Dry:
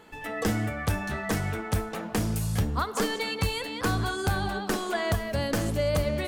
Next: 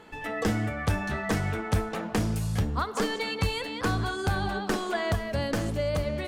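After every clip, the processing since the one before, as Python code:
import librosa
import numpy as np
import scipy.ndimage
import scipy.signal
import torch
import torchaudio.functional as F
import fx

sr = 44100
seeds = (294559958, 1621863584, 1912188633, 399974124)

y = fx.high_shelf(x, sr, hz=10000.0, db=-11.5)
y = fx.rider(y, sr, range_db=3, speed_s=0.5)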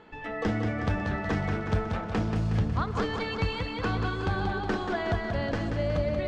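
y = fx.air_absorb(x, sr, metres=160.0)
y = fx.echo_feedback(y, sr, ms=183, feedback_pct=58, wet_db=-6)
y = F.gain(torch.from_numpy(y), -1.5).numpy()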